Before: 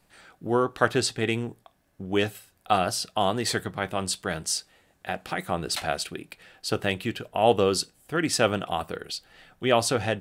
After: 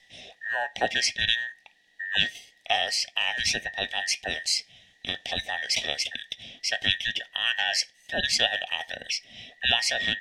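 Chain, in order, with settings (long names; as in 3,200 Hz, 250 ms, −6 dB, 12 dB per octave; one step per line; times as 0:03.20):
frequency inversion band by band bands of 2,000 Hz
drawn EQ curve 200 Hz 0 dB, 380 Hz −7 dB, 750 Hz +5 dB, 1,300 Hz −28 dB, 1,900 Hz +5 dB, 3,000 Hz +11 dB, 6,300 Hz +3 dB, 14,000 Hz −15 dB
in parallel at 0 dB: downward compressor, threshold −34 dBFS, peak gain reduction 18 dB
on the sum: level −3.5 dB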